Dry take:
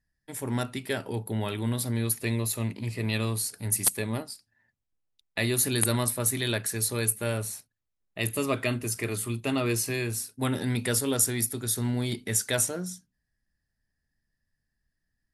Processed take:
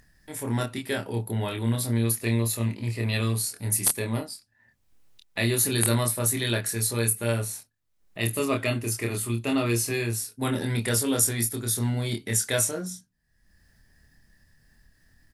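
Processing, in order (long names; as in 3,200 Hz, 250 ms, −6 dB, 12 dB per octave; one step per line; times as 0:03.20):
upward compression, threshold −44 dBFS
double-tracking delay 26 ms −3.5 dB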